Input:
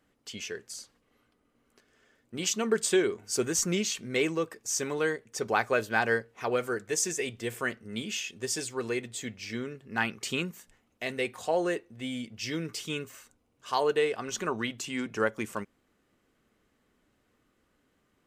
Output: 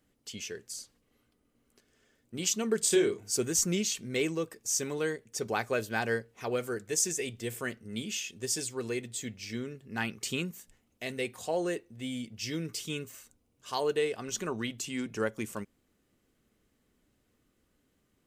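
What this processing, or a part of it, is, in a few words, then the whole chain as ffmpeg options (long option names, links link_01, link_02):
smiley-face EQ: -filter_complex "[0:a]lowshelf=frequency=180:gain=4,equalizer=frequency=1200:width_type=o:width=1.9:gain=-5,highshelf=frequency=6400:gain=6,asettb=1/sr,asplit=3[link_01][link_02][link_03];[link_01]atrim=end=2.794[link_04];[link_02]atrim=start=2.79:end=3.3,asetpts=PTS-STARTPTS,afade=type=in:duration=0.004:curve=qsin,afade=type=out:start_time=0.506:duration=0.004:curve=qsin,asplit=2[link_05][link_06];[link_06]adelay=30,volume=-4dB[link_07];[link_05][link_07]amix=inputs=2:normalize=0,atrim=end_sample=22491[link_08];[link_03]atrim=start=3.296[link_09];[link_04][link_08]acrossfade=duration=0.004:curve1=hsin:curve2=qsin[link_10];[link_10][link_09]acrossfade=duration=0.004:curve1=qsin:curve2=hsin,volume=-2dB"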